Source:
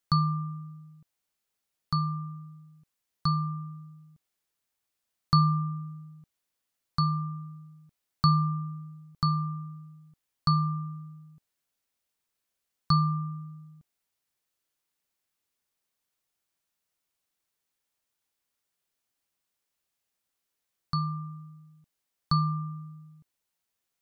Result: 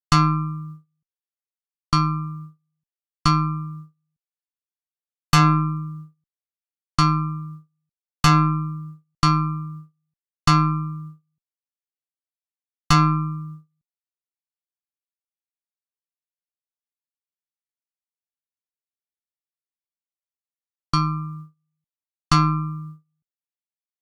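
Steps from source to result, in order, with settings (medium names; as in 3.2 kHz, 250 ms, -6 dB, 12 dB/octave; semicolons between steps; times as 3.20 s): Chebyshev shaper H 3 -33 dB, 4 -14 dB, 5 -17 dB, 8 -14 dB, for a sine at -9.5 dBFS; gate -40 dBFS, range -32 dB; trim +3.5 dB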